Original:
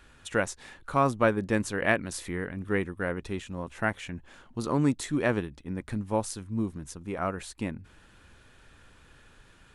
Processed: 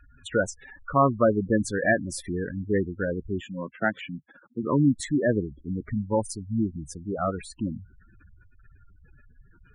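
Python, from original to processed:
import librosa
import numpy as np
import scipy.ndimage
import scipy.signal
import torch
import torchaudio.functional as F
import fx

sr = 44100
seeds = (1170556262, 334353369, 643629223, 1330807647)

y = fx.spec_gate(x, sr, threshold_db=-10, keep='strong')
y = fx.highpass(y, sr, hz=150.0, slope=24, at=(3.4, 4.62), fade=0.02)
y = F.gain(torch.from_numpy(y), 4.5).numpy()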